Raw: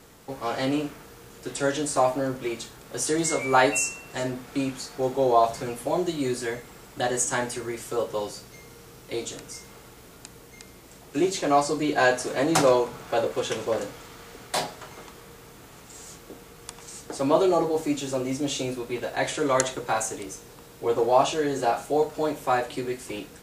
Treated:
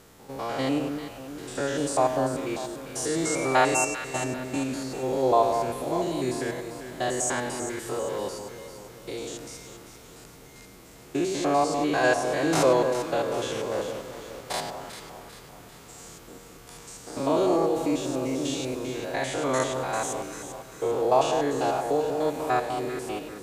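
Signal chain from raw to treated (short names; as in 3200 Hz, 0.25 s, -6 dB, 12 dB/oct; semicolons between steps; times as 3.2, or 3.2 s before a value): stepped spectrum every 0.1 s; echo with dull and thin repeats by turns 0.197 s, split 1200 Hz, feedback 68%, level -6.5 dB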